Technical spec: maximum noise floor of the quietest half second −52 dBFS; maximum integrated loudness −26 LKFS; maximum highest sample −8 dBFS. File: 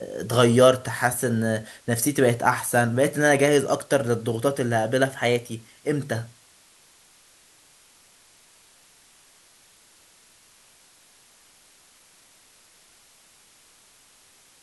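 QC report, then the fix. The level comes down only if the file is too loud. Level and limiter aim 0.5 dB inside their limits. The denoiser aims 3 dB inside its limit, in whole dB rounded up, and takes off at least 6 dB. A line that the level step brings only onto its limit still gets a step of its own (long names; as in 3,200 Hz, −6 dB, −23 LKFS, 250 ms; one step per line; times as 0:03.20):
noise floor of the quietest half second −56 dBFS: in spec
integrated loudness −22.5 LKFS: out of spec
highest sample −4.0 dBFS: out of spec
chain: level −4 dB
brickwall limiter −8.5 dBFS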